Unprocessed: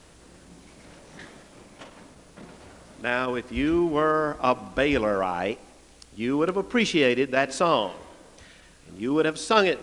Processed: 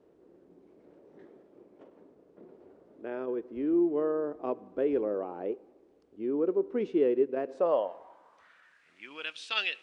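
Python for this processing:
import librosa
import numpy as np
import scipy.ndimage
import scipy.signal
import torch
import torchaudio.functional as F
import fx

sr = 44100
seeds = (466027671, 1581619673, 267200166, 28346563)

y = fx.filter_sweep_bandpass(x, sr, from_hz=390.0, to_hz=2900.0, start_s=7.39, end_s=9.29, q=3.1)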